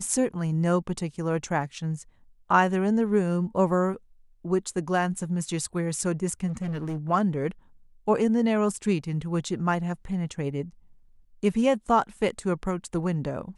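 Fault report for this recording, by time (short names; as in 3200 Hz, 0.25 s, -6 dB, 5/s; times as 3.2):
6.47–6.98 clipped -27 dBFS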